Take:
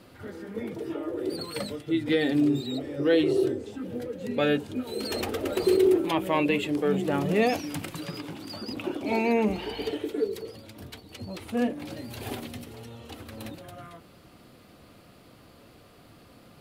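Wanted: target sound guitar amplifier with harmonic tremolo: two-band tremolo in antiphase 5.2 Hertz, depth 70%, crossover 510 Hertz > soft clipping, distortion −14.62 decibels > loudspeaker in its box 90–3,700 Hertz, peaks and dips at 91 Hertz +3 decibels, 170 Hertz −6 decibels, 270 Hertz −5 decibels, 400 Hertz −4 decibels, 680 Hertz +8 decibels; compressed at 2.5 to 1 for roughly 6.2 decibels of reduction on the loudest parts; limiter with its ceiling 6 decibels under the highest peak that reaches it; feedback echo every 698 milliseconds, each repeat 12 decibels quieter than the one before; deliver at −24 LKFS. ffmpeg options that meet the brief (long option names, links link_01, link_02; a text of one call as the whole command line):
ffmpeg -i in.wav -filter_complex "[0:a]acompressor=threshold=-26dB:ratio=2.5,alimiter=limit=-22dB:level=0:latency=1,aecho=1:1:698|1396|2094:0.251|0.0628|0.0157,acrossover=split=510[link_01][link_02];[link_01]aeval=exprs='val(0)*(1-0.7/2+0.7/2*cos(2*PI*5.2*n/s))':channel_layout=same[link_03];[link_02]aeval=exprs='val(0)*(1-0.7/2-0.7/2*cos(2*PI*5.2*n/s))':channel_layout=same[link_04];[link_03][link_04]amix=inputs=2:normalize=0,asoftclip=threshold=-30dB,highpass=90,equalizer=frequency=91:width_type=q:width=4:gain=3,equalizer=frequency=170:width_type=q:width=4:gain=-6,equalizer=frequency=270:width_type=q:width=4:gain=-5,equalizer=frequency=400:width_type=q:width=4:gain=-4,equalizer=frequency=680:width_type=q:width=4:gain=8,lowpass=frequency=3700:width=0.5412,lowpass=frequency=3700:width=1.3066,volume=16.5dB" out.wav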